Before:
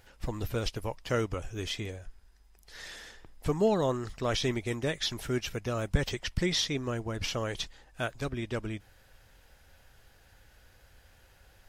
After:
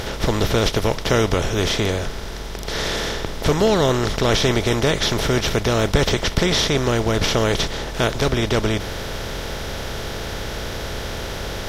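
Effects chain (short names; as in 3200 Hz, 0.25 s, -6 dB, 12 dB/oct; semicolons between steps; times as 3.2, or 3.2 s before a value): per-bin compression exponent 0.4; gain +6 dB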